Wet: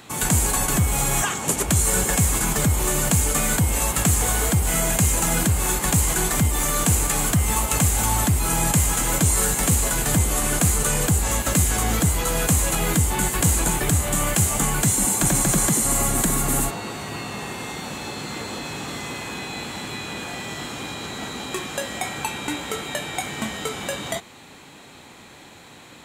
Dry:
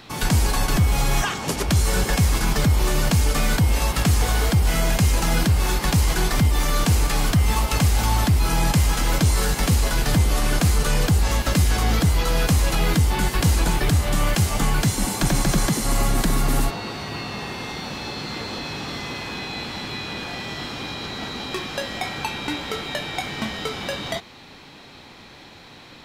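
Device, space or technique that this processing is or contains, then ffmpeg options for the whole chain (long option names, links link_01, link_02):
budget condenser microphone: -af "highpass=frequency=78:poles=1,highshelf=frequency=6200:width_type=q:width=3:gain=6"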